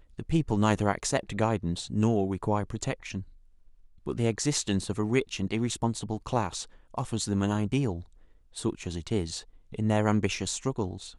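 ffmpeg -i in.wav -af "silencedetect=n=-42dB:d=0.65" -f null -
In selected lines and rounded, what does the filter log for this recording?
silence_start: 3.23
silence_end: 4.06 | silence_duration: 0.83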